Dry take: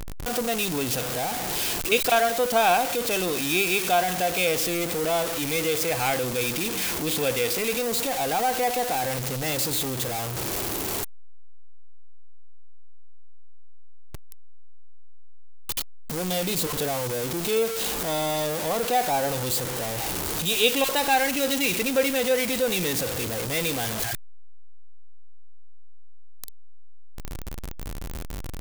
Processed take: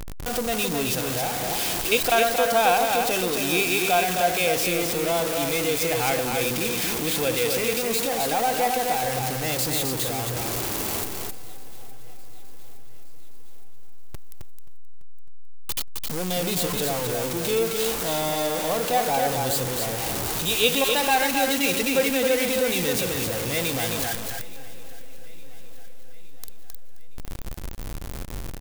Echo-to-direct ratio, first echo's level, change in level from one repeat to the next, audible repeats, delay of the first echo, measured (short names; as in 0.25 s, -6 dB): -4.0 dB, -4.5 dB, no steady repeat, 7, 0.264 s